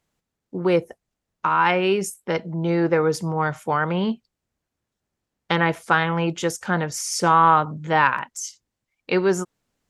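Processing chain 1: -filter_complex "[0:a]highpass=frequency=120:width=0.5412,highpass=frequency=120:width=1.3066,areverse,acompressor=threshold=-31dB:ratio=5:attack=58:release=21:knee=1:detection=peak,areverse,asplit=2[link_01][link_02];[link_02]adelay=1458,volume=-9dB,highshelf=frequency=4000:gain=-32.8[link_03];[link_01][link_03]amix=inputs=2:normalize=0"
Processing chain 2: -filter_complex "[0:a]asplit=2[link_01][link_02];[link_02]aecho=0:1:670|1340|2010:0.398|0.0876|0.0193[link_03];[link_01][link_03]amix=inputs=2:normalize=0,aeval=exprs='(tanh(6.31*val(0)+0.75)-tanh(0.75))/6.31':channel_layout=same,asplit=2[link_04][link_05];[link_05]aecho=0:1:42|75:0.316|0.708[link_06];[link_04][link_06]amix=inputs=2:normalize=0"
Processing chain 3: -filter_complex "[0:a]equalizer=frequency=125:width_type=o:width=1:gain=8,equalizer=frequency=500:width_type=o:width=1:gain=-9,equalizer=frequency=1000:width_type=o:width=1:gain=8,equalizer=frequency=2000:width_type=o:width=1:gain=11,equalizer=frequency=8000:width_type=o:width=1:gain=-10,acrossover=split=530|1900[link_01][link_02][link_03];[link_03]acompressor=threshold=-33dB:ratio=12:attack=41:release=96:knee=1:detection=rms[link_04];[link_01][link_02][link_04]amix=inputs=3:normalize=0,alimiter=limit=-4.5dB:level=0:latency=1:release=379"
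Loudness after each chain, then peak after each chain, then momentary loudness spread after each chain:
−27.0, −25.0, −19.5 LKFS; −7.5, −7.5, −4.5 dBFS; 12, 12, 11 LU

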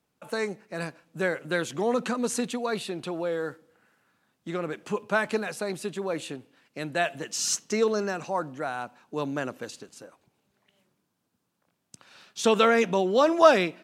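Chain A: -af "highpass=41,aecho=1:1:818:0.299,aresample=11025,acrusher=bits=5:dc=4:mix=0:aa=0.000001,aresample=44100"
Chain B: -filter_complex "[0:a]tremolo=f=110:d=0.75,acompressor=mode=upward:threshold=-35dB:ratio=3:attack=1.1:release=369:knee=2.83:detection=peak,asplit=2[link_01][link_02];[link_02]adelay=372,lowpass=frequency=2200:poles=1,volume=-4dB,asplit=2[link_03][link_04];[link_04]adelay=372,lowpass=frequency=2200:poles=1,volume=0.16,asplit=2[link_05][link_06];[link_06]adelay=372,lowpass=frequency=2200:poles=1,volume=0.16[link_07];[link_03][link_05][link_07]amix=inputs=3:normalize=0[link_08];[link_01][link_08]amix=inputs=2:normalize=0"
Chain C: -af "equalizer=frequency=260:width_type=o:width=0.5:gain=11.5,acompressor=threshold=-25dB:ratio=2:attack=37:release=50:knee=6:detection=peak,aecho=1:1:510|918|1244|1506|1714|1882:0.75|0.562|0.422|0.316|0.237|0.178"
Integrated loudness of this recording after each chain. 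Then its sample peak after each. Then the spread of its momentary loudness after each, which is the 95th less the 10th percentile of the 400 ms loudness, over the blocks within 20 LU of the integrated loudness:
−26.5, −30.0, −25.5 LKFS; −3.5, −5.0, −7.0 dBFS; 23, 16, 10 LU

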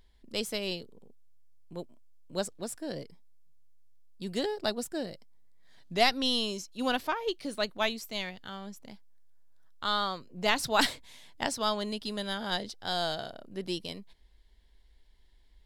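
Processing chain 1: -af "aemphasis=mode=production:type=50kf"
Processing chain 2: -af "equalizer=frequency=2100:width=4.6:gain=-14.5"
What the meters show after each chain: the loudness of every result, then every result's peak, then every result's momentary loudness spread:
−29.5, −33.0 LKFS; −7.0, −11.5 dBFS; 17, 16 LU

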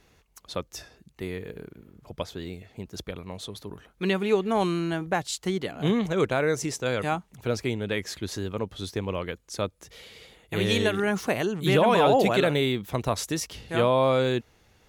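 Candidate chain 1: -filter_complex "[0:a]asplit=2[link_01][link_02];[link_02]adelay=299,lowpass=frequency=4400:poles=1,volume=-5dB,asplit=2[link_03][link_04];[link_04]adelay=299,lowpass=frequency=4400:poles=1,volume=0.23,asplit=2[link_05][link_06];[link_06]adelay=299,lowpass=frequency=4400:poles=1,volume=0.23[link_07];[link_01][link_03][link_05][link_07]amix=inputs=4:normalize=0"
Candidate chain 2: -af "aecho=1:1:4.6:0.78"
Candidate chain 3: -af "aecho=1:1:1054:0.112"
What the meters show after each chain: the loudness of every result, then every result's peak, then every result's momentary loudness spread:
−25.0, −24.0, −26.5 LKFS; −7.5, −6.5, −10.0 dBFS; 17, 17, 18 LU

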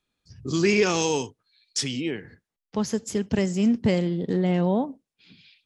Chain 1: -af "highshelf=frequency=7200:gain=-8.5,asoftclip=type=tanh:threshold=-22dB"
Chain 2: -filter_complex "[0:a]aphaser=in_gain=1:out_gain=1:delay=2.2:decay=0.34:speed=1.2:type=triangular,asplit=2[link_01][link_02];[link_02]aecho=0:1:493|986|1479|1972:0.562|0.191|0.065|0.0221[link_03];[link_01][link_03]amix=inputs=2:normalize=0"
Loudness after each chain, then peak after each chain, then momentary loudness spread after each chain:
−29.0, −24.0 LKFS; −22.0, −6.5 dBFS; 11, 11 LU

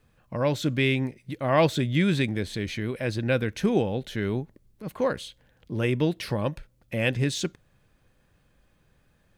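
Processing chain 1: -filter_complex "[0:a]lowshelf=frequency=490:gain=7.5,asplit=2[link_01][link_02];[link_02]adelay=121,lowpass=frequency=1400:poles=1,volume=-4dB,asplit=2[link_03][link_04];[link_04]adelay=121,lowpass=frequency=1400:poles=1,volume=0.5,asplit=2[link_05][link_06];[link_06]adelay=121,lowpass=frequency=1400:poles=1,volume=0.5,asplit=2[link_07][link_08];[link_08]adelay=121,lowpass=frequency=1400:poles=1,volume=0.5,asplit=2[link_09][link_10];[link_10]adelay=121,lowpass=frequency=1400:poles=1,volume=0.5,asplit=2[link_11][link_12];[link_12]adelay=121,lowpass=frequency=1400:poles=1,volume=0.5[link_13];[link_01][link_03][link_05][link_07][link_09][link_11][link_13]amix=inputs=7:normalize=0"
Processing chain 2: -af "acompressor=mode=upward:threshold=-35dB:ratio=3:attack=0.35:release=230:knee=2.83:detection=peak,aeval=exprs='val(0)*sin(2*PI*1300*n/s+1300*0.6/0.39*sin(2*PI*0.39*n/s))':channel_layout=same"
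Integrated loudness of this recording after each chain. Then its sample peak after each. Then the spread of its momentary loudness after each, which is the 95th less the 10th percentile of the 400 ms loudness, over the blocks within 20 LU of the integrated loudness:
−20.5, −28.5 LKFS; −3.5, −9.0 dBFS; 12, 12 LU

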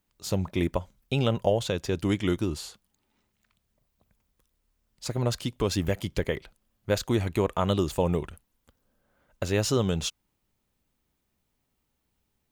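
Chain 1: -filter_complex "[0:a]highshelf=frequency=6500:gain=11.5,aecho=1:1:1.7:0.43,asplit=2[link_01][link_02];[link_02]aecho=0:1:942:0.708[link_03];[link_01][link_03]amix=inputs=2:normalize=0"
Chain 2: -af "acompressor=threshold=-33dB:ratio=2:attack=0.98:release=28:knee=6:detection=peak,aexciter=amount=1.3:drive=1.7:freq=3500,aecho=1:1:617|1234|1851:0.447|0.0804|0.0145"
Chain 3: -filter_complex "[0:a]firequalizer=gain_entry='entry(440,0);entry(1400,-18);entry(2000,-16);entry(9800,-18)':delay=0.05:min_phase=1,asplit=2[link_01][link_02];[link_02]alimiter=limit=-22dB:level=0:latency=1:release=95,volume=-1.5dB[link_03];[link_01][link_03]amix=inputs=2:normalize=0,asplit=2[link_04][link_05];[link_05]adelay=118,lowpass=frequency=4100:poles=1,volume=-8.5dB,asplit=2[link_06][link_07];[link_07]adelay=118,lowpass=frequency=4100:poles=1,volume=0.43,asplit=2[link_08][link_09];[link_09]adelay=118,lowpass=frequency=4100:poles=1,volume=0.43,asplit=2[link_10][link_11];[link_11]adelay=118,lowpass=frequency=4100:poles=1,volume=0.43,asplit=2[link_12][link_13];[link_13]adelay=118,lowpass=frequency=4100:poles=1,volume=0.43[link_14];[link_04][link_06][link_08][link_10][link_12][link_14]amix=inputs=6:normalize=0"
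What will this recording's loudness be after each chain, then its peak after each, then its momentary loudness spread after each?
−27.0, −35.0, −25.5 LKFS; −8.5, −19.5, −9.5 dBFS; 9, 12, 11 LU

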